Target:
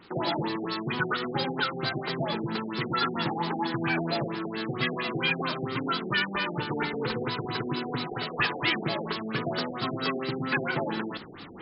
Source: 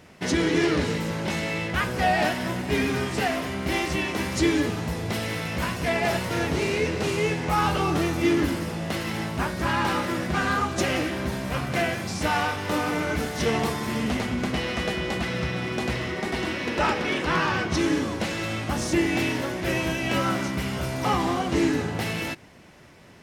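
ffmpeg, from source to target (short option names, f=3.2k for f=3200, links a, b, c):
-af "asetrate=88200,aresample=44100,areverse,acompressor=mode=upward:threshold=-30dB:ratio=2.5,areverse,equalizer=f=620:w=2.1:g=-12,afftfilt=real='re*lt(b*sr/1024,760*pow(5400/760,0.5+0.5*sin(2*PI*4.4*pts/sr)))':imag='im*lt(b*sr/1024,760*pow(5400/760,0.5+0.5*sin(2*PI*4.4*pts/sr)))':win_size=1024:overlap=0.75"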